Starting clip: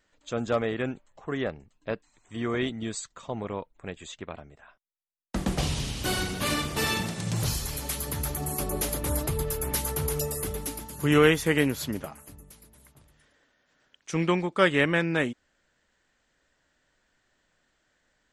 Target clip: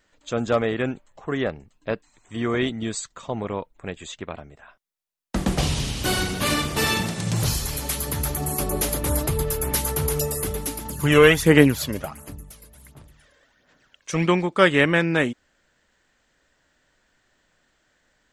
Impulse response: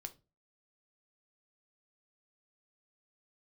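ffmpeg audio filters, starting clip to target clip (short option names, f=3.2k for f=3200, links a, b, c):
-filter_complex "[0:a]asettb=1/sr,asplit=3[a][b][c];[a]atrim=end=10.854[d];[b]atrim=start=10.85:end=14.26,asetpts=PTS-STARTPTS,afade=t=in:d=0.004:c=qsin,afade=t=out:st=3.406:d=0.004:c=qsin,aphaser=in_gain=1:out_gain=1:delay=1.9:decay=0.5:speed=1.4:type=sinusoidal[e];[c]atrim=start=14.256[f];[d][e]acrossfade=d=0.004:c1=hsin:c2=qsin[g];[g][f]acrossfade=d=0.004:c1=qsin:c2=hsin,volume=5dB"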